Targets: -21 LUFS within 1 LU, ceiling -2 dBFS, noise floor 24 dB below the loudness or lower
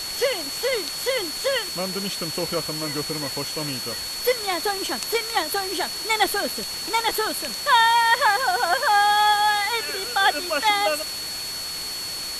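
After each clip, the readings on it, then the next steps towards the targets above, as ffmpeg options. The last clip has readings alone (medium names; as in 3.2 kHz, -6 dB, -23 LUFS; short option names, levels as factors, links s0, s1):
steady tone 4.4 kHz; tone level -30 dBFS; noise floor -31 dBFS; noise floor target -47 dBFS; loudness -22.5 LUFS; peak level -6.5 dBFS; loudness target -21.0 LUFS
-> -af "bandreject=f=4400:w=30"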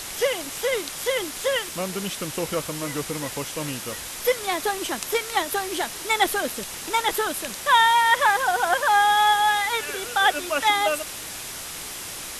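steady tone not found; noise floor -35 dBFS; noise floor target -47 dBFS
-> -af "afftdn=nr=12:nf=-35"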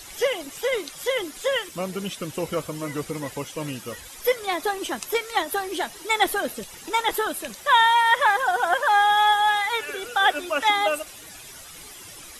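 noise floor -43 dBFS; noise floor target -47 dBFS
-> -af "afftdn=nr=6:nf=-43"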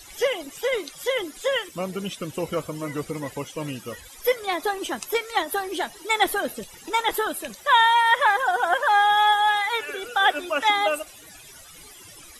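noise floor -46 dBFS; noise floor target -47 dBFS
-> -af "afftdn=nr=6:nf=-46"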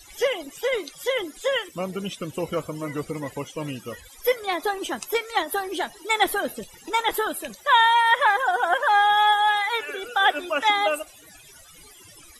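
noise floor -49 dBFS; loudness -23.5 LUFS; peak level -7.0 dBFS; loudness target -21.0 LUFS
-> -af "volume=1.33"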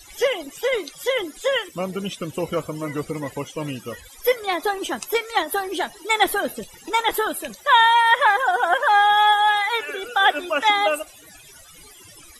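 loudness -21.0 LUFS; peak level -4.5 dBFS; noise floor -46 dBFS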